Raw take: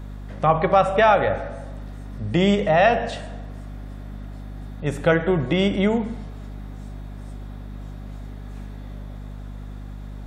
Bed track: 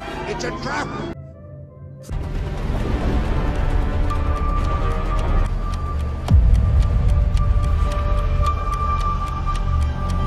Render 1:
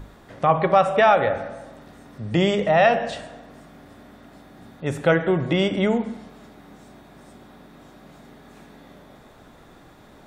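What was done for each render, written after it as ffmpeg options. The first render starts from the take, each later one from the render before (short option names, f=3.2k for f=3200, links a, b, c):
-af "bandreject=f=50:t=h:w=6,bandreject=f=100:t=h:w=6,bandreject=f=150:t=h:w=6,bandreject=f=200:t=h:w=6,bandreject=f=250:t=h:w=6"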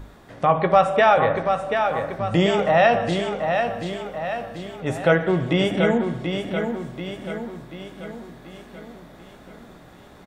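-filter_complex "[0:a]asplit=2[a][b];[b]adelay=17,volume=-12dB[c];[a][c]amix=inputs=2:normalize=0,asplit=2[d][e];[e]aecho=0:1:735|1470|2205|2940|3675|4410:0.501|0.261|0.136|0.0705|0.0366|0.0191[f];[d][f]amix=inputs=2:normalize=0"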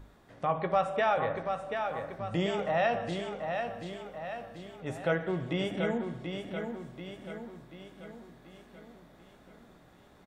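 -af "volume=-11.5dB"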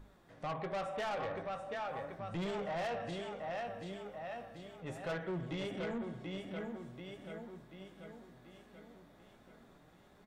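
-af "flanger=delay=4.6:depth=6.2:regen=67:speed=0.39:shape=triangular,asoftclip=type=tanh:threshold=-34dB"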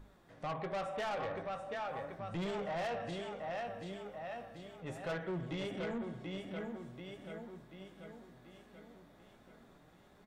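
-af anull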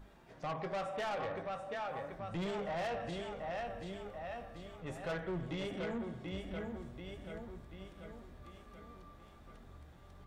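-filter_complex "[1:a]volume=-36.5dB[a];[0:a][a]amix=inputs=2:normalize=0"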